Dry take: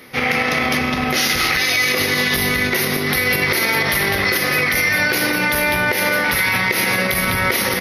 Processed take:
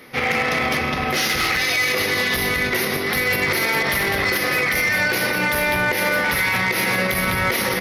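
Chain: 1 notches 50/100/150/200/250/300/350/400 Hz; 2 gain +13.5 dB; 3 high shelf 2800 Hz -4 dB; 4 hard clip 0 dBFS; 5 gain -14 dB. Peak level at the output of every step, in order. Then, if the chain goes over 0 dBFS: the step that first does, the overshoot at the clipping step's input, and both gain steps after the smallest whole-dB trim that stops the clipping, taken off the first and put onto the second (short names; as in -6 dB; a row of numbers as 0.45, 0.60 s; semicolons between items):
-4.5, +9.0, +8.0, 0.0, -14.0 dBFS; step 2, 8.0 dB; step 2 +5.5 dB, step 5 -6 dB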